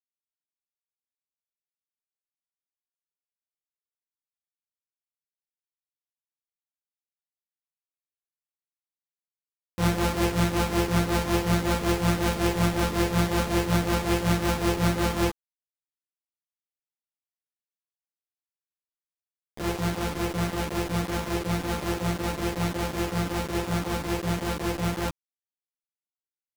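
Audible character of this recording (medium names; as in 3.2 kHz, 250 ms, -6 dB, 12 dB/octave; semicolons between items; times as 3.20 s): a buzz of ramps at a fixed pitch in blocks of 256 samples; tremolo triangle 5.4 Hz, depth 85%; a quantiser's noise floor 6-bit, dither none; a shimmering, thickened sound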